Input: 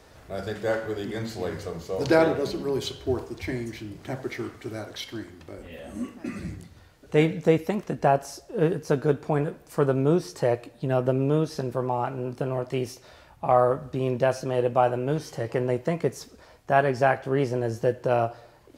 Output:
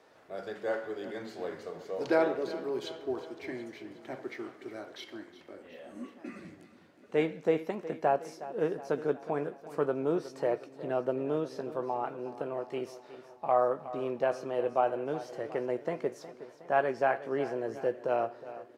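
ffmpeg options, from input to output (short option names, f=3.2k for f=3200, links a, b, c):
-af "highpass=290,highshelf=f=4.5k:g=-12,aecho=1:1:365|730|1095|1460|1825:0.178|0.0996|0.0558|0.0312|0.0175,volume=-5.5dB"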